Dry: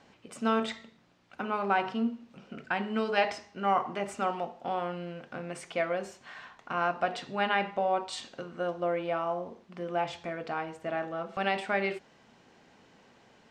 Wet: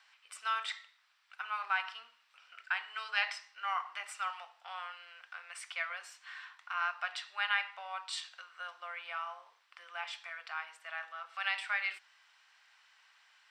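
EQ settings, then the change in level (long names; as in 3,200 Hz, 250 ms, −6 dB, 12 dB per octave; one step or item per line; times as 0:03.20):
high-pass filter 1,200 Hz 24 dB per octave
notch filter 6,600 Hz, Q 7.9
0.0 dB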